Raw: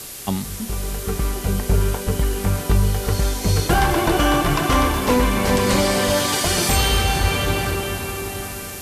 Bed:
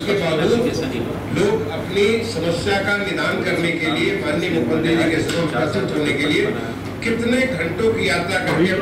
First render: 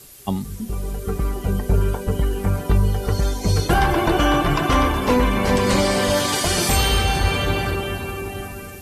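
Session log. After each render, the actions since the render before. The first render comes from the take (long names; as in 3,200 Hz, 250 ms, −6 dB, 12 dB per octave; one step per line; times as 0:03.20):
broadband denoise 12 dB, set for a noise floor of −32 dBFS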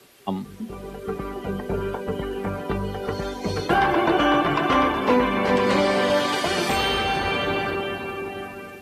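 high-pass filter 80 Hz 6 dB per octave
three-way crossover with the lows and the highs turned down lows −13 dB, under 180 Hz, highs −15 dB, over 3,900 Hz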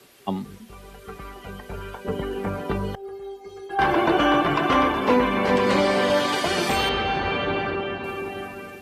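0:00.58–0:02.05: parametric band 290 Hz −13 dB 2.9 octaves
0:02.95–0:03.79: stiff-string resonator 390 Hz, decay 0.23 s, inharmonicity 0.008
0:06.89–0:08.04: high-frequency loss of the air 140 metres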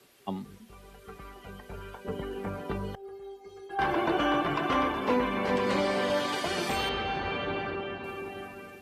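level −7.5 dB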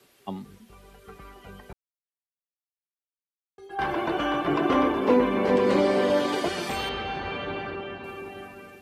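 0:01.73–0:03.58: silence
0:04.47–0:06.49: parametric band 360 Hz +9.5 dB 1.7 octaves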